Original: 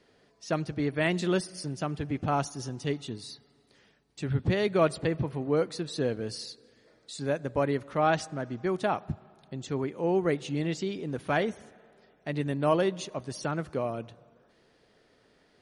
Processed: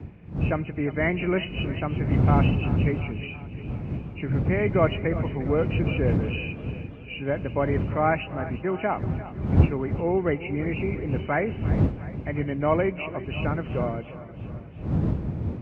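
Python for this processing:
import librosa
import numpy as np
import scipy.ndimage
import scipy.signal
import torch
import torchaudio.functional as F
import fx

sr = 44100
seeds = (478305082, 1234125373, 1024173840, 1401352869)

y = fx.freq_compress(x, sr, knee_hz=2000.0, ratio=4.0)
y = fx.dmg_wind(y, sr, seeds[0], corner_hz=130.0, level_db=-27.0)
y = scipy.signal.sosfilt(scipy.signal.butter(2, 73.0, 'highpass', fs=sr, output='sos'), y)
y = fx.echo_feedback(y, sr, ms=353, feedback_pct=59, wet_db=-15.5)
y = fx.echo_warbled(y, sr, ms=337, feedback_pct=54, rate_hz=2.8, cents=124, wet_db=-22.0)
y = F.gain(torch.from_numpy(y), 2.0).numpy()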